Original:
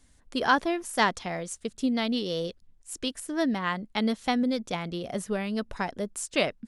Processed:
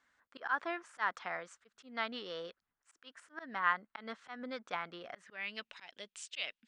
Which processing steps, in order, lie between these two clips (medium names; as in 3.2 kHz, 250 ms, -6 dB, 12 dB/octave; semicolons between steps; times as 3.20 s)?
steep low-pass 8.8 kHz; slow attack 177 ms; band-pass sweep 1.4 kHz -> 3 kHz, 4.99–5.78 s; trim +3.5 dB